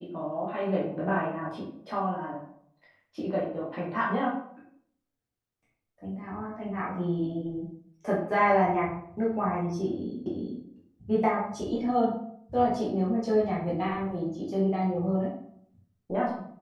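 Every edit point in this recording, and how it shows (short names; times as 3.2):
10.26 repeat of the last 0.37 s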